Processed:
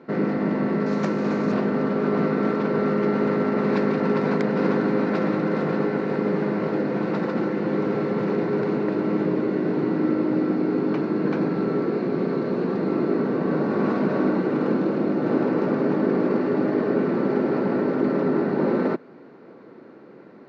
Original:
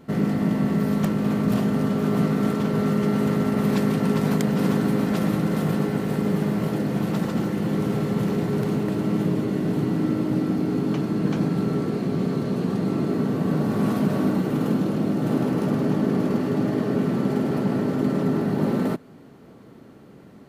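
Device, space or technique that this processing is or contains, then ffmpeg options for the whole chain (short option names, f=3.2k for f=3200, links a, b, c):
kitchen radio: -filter_complex "[0:a]asettb=1/sr,asplit=3[a][b][c];[a]atrim=end=0.864[d];[b]atrim=start=0.86:end=1.52,asetpts=PTS-STARTPTS,afade=t=in:d=0.004:c=qsin,afade=t=out:st=0.656:d=0.004:c=qsin,equalizer=f=6.6k:t=o:w=0.86:g=13[e];[c]atrim=start=1.516[f];[d][e]acrossfade=d=0.004:c1=hsin:c2=qsin[g];[g][f]acrossfade=d=0.004:c1=qsin:c2=hsin,highpass=210,equalizer=f=350:t=q:w=4:g=6,equalizer=f=510:t=q:w=4:g=6,equalizer=f=970:t=q:w=4:g=4,equalizer=f=1.5k:t=q:w=4:g=5,equalizer=f=2.2k:t=q:w=4:g=3,equalizer=f=3.2k:t=q:w=4:g=-9,lowpass=f=4.4k:w=0.5412,lowpass=f=4.4k:w=1.3066"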